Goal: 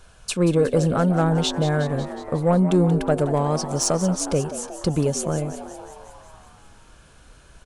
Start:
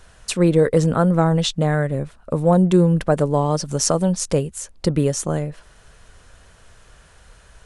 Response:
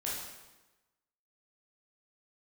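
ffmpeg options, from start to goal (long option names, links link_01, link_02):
-filter_complex "[0:a]asuperstop=centerf=1900:order=4:qfactor=6.6,acontrast=58,asplit=9[link_01][link_02][link_03][link_04][link_05][link_06][link_07][link_08][link_09];[link_02]adelay=182,afreqshift=97,volume=-12.5dB[link_10];[link_03]adelay=364,afreqshift=194,volume=-16.2dB[link_11];[link_04]adelay=546,afreqshift=291,volume=-20dB[link_12];[link_05]adelay=728,afreqshift=388,volume=-23.7dB[link_13];[link_06]adelay=910,afreqshift=485,volume=-27.5dB[link_14];[link_07]adelay=1092,afreqshift=582,volume=-31.2dB[link_15];[link_08]adelay=1274,afreqshift=679,volume=-35dB[link_16];[link_09]adelay=1456,afreqshift=776,volume=-38.7dB[link_17];[link_01][link_10][link_11][link_12][link_13][link_14][link_15][link_16][link_17]amix=inputs=9:normalize=0,volume=-8dB"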